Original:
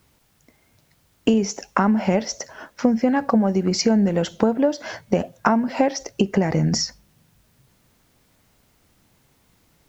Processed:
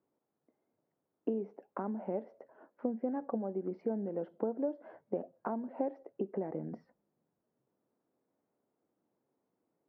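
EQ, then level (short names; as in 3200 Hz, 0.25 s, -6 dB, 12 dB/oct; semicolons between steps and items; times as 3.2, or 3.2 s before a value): ladder band-pass 460 Hz, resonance 20%; air absorption 290 m; -2.5 dB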